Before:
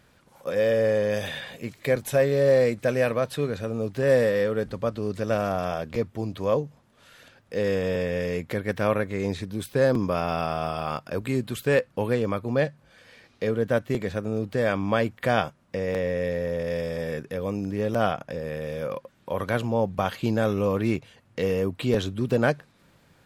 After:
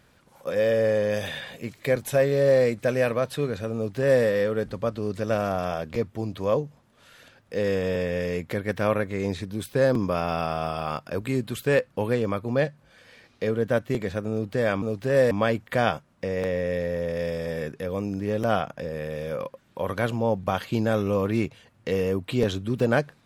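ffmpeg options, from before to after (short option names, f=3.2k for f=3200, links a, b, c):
-filter_complex "[0:a]asplit=3[a][b][c];[a]atrim=end=14.822[d];[b]atrim=start=3.748:end=4.242[e];[c]atrim=start=14.818[f];[d][e]acrossfade=d=0.004:c1=hsin:c2=hsin[g];[g][f]acrossfade=d=0.004:c1=hsin:c2=hsin"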